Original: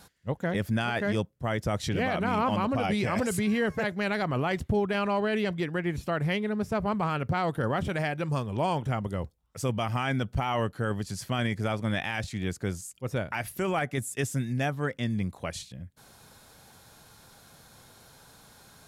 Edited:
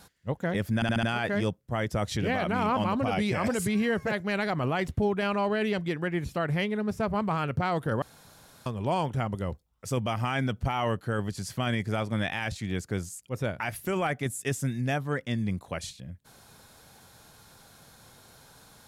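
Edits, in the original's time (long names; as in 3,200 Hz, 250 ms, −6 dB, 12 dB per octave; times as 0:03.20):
0:00.75: stutter 0.07 s, 5 plays
0:07.74–0:08.38: fill with room tone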